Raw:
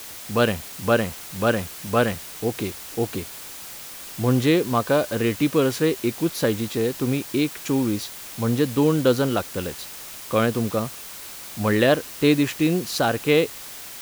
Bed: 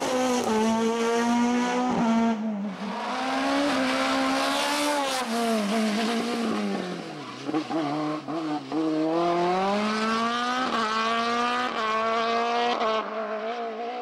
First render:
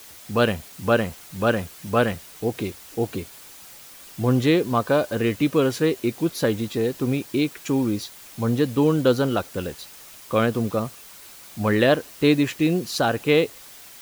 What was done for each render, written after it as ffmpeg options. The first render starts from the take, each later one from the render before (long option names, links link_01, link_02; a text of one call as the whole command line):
ffmpeg -i in.wav -af "afftdn=noise_reduction=7:noise_floor=-38" out.wav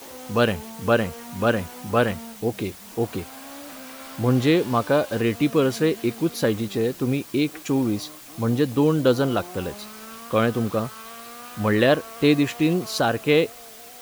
ffmpeg -i in.wav -i bed.wav -filter_complex "[1:a]volume=-16.5dB[link_01];[0:a][link_01]amix=inputs=2:normalize=0" out.wav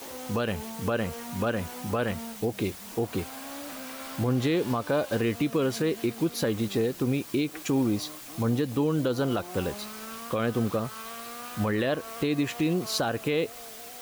ffmpeg -i in.wav -af "alimiter=limit=-17.5dB:level=0:latency=1:release=176" out.wav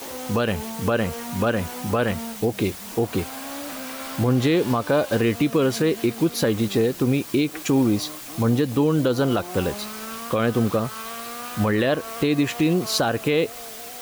ffmpeg -i in.wav -af "volume=6dB" out.wav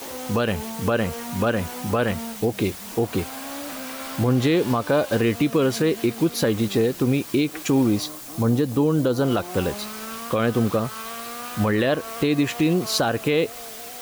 ffmpeg -i in.wav -filter_complex "[0:a]asettb=1/sr,asplit=3[link_01][link_02][link_03];[link_01]atrim=end=8.064[link_04];[link_02]atrim=start=8.06:end=9.25,asetpts=PTS-STARTPTS,afade=type=in:duration=0.004:curve=qsin,afade=type=out:start_time=1.186:duration=0.004:curve=qsin,equalizer=frequency=2500:width_type=o:width=1.6:gain=-5.5[link_05];[link_03]atrim=start=9.246[link_06];[link_04][link_05]acrossfade=duration=0.004:curve1=hsin:curve2=qsin[link_07];[link_07][link_06]acrossfade=duration=0.004:curve1=qsin:curve2=hsin" out.wav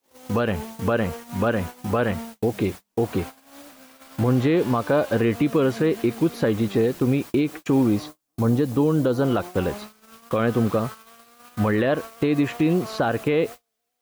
ffmpeg -i in.wav -filter_complex "[0:a]agate=range=-42dB:threshold=-30dB:ratio=16:detection=peak,acrossover=split=2500[link_01][link_02];[link_02]acompressor=threshold=-41dB:ratio=4:attack=1:release=60[link_03];[link_01][link_03]amix=inputs=2:normalize=0" out.wav